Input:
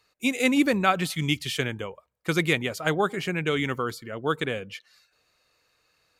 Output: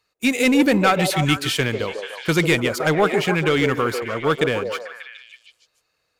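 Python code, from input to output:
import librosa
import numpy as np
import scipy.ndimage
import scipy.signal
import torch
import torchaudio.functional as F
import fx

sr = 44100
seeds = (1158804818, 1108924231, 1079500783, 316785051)

p1 = fx.leveller(x, sr, passes=2)
y = p1 + fx.echo_stepped(p1, sr, ms=147, hz=490.0, octaves=0.7, feedback_pct=70, wet_db=-2.5, dry=0)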